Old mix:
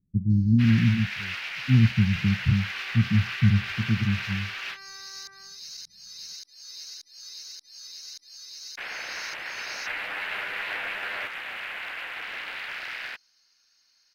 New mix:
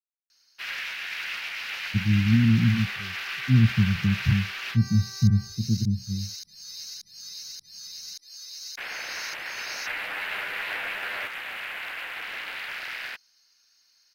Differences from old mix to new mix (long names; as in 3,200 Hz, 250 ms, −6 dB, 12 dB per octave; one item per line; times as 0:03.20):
speech: entry +1.80 s
master: add high-shelf EQ 9,500 Hz +10.5 dB